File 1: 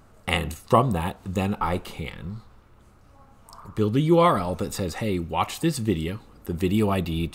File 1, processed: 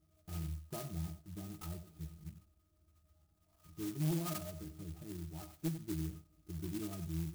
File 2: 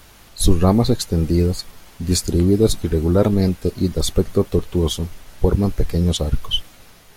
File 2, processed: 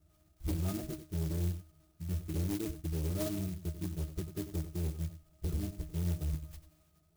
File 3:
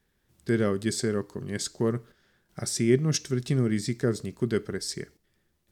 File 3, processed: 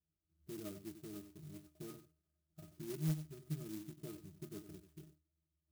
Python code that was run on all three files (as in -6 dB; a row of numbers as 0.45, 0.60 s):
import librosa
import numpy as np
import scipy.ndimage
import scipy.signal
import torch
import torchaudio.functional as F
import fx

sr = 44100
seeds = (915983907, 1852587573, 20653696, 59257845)

p1 = fx.octave_resonator(x, sr, note='D#', decay_s=0.2)
p2 = np.clip(10.0 ** (22.5 / 20.0) * p1, -1.0, 1.0) / 10.0 ** (22.5 / 20.0)
p3 = p2 + fx.echo_single(p2, sr, ms=92, db=-11.5, dry=0)
p4 = fx.clock_jitter(p3, sr, seeds[0], jitter_ms=0.14)
y = p4 * 10.0 ** (-7.0 / 20.0)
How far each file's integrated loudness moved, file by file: -18.0, -18.5, -18.5 LU